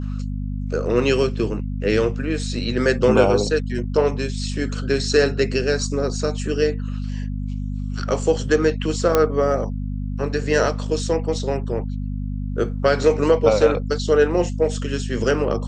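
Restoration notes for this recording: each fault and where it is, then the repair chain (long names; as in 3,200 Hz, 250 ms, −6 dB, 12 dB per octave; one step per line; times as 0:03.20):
mains hum 50 Hz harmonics 5 −26 dBFS
0:09.15: click −3 dBFS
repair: click removal
hum removal 50 Hz, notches 5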